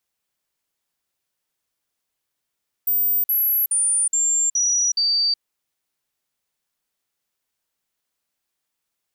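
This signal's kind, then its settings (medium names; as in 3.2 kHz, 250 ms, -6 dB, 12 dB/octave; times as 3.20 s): stepped sine 14.7 kHz down, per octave 3, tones 6, 0.37 s, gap 0.05 s -16.5 dBFS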